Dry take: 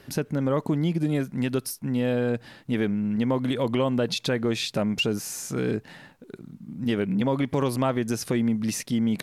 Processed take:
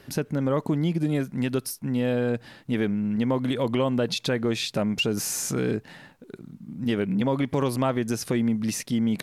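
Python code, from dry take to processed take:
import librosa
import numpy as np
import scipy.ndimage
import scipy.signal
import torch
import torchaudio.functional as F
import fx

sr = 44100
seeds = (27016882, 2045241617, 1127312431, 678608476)

y = fx.env_flatten(x, sr, amount_pct=50, at=(5.17, 5.73))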